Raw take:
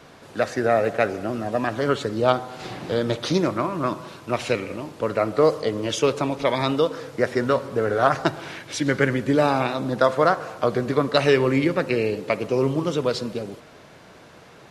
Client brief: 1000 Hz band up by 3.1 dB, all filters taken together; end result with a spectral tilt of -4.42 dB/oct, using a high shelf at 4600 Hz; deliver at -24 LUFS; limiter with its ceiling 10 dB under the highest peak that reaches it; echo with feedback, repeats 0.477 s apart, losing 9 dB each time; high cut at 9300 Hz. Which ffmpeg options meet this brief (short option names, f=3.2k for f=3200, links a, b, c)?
-af "lowpass=9.3k,equalizer=f=1k:t=o:g=4,highshelf=f=4.6k:g=4,alimiter=limit=-11.5dB:level=0:latency=1,aecho=1:1:477|954|1431|1908:0.355|0.124|0.0435|0.0152"